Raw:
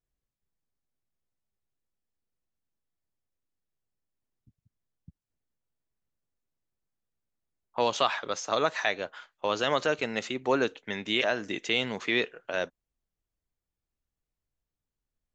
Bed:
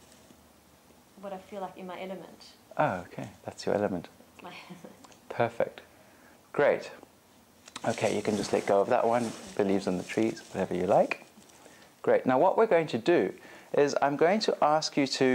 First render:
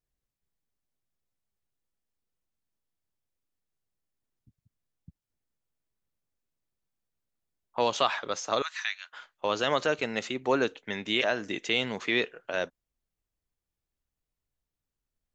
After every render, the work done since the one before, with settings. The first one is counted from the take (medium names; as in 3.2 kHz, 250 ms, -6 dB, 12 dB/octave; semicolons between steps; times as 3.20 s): 8.62–9.13 s: Bessel high-pass 2 kHz, order 6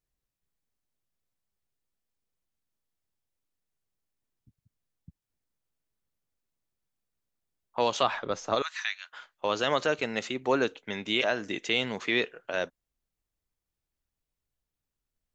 8.03–8.55 s: tilt EQ -2.5 dB/octave; 10.72–11.28 s: band-stop 1.8 kHz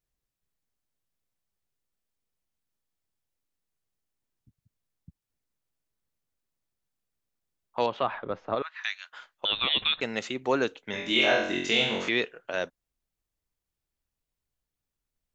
7.86–8.84 s: distance through air 450 m; 9.45–10.01 s: frequency inversion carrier 4 kHz; 10.91–12.09 s: flutter echo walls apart 3.8 m, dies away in 0.64 s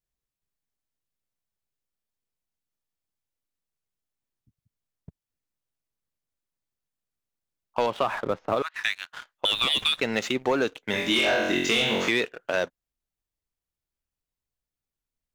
waveshaping leveller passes 2; compression, threshold -20 dBFS, peak gain reduction 6 dB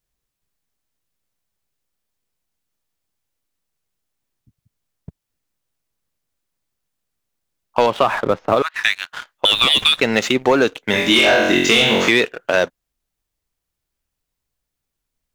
trim +9.5 dB